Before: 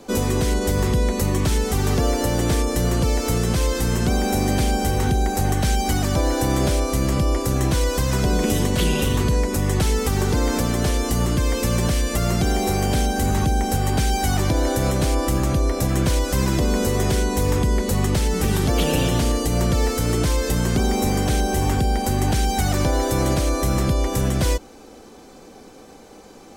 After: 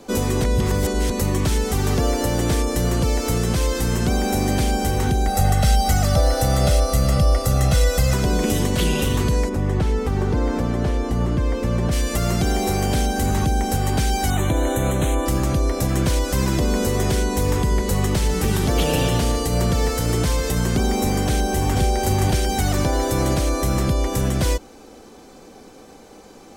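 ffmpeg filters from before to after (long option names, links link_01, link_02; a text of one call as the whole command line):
ffmpeg -i in.wav -filter_complex "[0:a]asettb=1/sr,asplit=3[link_01][link_02][link_03];[link_01]atrim=end=5.274[link_04];[link_02]atrim=start=5.27:end=8.14,asetpts=PTS-STARTPTS,afade=type=in:duration=0.004:curve=qsin,afade=type=out:start_time=2.866:duration=0.004:curve=qsin,aecho=1:1:1.5:0.75,atrim=end_sample=126567[link_05];[link_03]atrim=start=8.136[link_06];[link_04][link_05]acrossfade=duration=0.004:curve1=hsin:curve2=qsin[link_07];[link_07][link_06]acrossfade=duration=0.004:curve1=qsin:curve2=hsin,asplit=3[link_08][link_09][link_10];[link_08]afade=type=out:start_time=9.48:duration=0.02[link_11];[link_09]lowpass=frequency=1300:poles=1,afade=type=in:start_time=9.48:duration=0.02,afade=type=out:start_time=11.91:duration=0.02[link_12];[link_10]afade=type=in:start_time=11.91:duration=0.02[link_13];[link_11][link_12][link_13]amix=inputs=3:normalize=0,asettb=1/sr,asplit=3[link_14][link_15][link_16];[link_14]atrim=end=14.304[link_17];[link_15]atrim=start=14.3:end=15.26,asetpts=PTS-STARTPTS,afade=type=in:duration=0.004:curve=qsin,afade=type=out:start_time=0.956:duration=0.004:curve=qsin,asuperstop=centerf=5000:order=8:qfactor=2.3[link_18];[link_16]atrim=start=15.256[link_19];[link_17][link_18]acrossfade=duration=0.004:curve1=hsin:curve2=qsin[link_20];[link_20][link_19]acrossfade=duration=0.004:curve1=qsin:curve2=hsin,asplit=3[link_21][link_22][link_23];[link_21]afade=type=out:start_time=17.54:duration=0.02[link_24];[link_22]aecho=1:1:70|147:0.15|0.237,afade=type=in:start_time=17.54:duration=0.02,afade=type=out:start_time=20.64:duration=0.02[link_25];[link_23]afade=type=in:start_time=20.64:duration=0.02[link_26];[link_24][link_25][link_26]amix=inputs=3:normalize=0,asplit=2[link_27][link_28];[link_28]afade=type=in:start_time=21.26:duration=0.01,afade=type=out:start_time=21.99:duration=0.01,aecho=0:1:490|980|1470|1960|2450:0.668344|0.23392|0.0818721|0.0286552|0.0100293[link_29];[link_27][link_29]amix=inputs=2:normalize=0,asplit=3[link_30][link_31][link_32];[link_30]atrim=end=0.442[link_33];[link_31]atrim=start=0.438:end=1.102,asetpts=PTS-STARTPTS,areverse[link_34];[link_32]atrim=start=1.098[link_35];[link_33][link_34]acrossfade=duration=0.004:curve1=hsin:curve2=hsin[link_36];[link_36][link_35]acrossfade=duration=0.004:curve1=hsin:curve2=hsin" out.wav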